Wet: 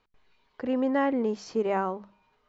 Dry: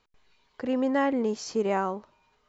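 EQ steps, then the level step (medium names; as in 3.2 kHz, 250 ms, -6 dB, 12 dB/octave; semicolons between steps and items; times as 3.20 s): distance through air 72 m; treble shelf 5.5 kHz -6.5 dB; hum notches 50/100/150/200 Hz; 0.0 dB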